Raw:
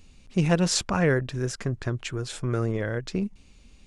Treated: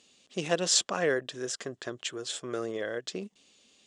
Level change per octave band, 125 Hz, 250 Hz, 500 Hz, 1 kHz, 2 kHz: −18.5, −10.5, −3.0, −4.5, −3.5 decibels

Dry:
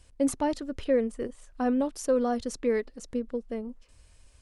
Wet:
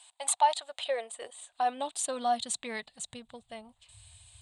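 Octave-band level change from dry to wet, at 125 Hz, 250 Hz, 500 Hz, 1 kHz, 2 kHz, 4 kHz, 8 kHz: can't be measured, −17.5 dB, −9.0 dB, +7.0 dB, +0.5 dB, +9.0 dB, +7.5 dB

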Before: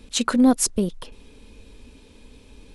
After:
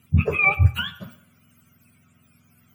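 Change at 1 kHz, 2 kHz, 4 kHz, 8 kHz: −1.0 dB, +13.0 dB, −2.5 dB, below −25 dB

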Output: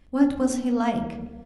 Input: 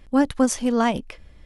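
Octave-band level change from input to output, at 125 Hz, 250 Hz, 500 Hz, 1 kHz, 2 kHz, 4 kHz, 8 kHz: 0.0, −1.0, −4.0, −4.5, −6.5, −7.0, −7.5 decibels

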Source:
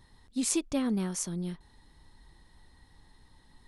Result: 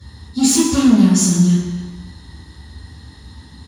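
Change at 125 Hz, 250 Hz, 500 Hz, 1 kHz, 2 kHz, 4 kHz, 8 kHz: +21.5, +19.0, +11.0, +16.0, +13.5, +17.5, +15.5 decibels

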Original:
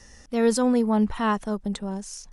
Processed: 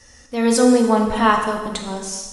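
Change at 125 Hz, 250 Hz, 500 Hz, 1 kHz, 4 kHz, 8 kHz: +1.5, +5.0, +6.5, +9.5, +10.0, +9.5 decibels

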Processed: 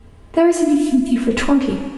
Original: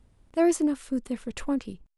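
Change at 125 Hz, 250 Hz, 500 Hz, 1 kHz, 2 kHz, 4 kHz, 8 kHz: can't be measured, +11.5 dB, +10.0 dB, +11.0 dB, +14.5 dB, +15.0 dB, +7.0 dB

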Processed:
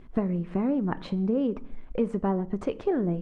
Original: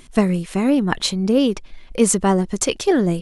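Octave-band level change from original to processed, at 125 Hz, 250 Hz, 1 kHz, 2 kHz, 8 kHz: −7.5 dB, −8.5 dB, −10.5 dB, −16.5 dB, below −35 dB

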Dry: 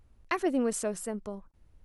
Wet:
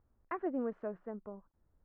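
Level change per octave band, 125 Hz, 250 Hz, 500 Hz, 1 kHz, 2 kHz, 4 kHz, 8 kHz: −9.0 dB, −8.0 dB, −7.5 dB, −7.0 dB, −13.0 dB, below −30 dB, below −40 dB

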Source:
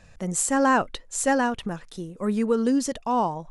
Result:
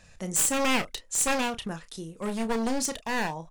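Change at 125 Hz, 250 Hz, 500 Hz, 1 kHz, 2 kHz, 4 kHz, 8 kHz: −4.5, −6.5, −6.0, −7.0, −1.5, +5.5, +2.0 decibels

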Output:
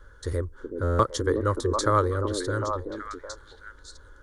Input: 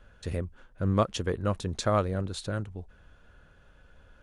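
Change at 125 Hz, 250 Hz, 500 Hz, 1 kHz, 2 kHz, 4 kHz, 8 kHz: +2.0, +1.5, +5.0, +7.0, +6.0, +2.5, +6.0 decibels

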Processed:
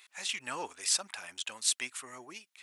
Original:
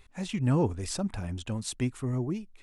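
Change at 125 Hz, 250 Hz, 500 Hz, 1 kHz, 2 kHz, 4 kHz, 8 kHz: below −30 dB, −23.0 dB, −13.0 dB, −2.5 dB, +5.5 dB, +8.0 dB, +8.5 dB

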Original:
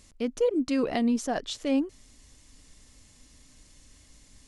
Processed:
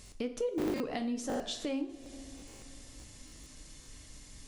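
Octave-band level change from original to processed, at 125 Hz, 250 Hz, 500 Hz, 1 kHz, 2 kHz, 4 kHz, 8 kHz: −0.5, −8.5, −7.0, −7.0, −6.5, −3.5, −2.5 decibels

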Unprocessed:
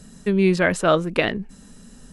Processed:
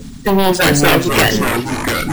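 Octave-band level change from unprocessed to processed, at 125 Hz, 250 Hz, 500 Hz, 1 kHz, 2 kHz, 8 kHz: +8.0, +7.0, +5.5, +11.0, +9.5, +17.0 decibels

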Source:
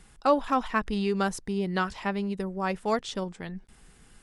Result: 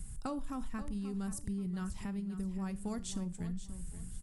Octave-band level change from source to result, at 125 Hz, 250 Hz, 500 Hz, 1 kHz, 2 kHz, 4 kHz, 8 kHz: −4.5, −6.5, −19.0, −19.5, −20.0, −14.0, −1.5 decibels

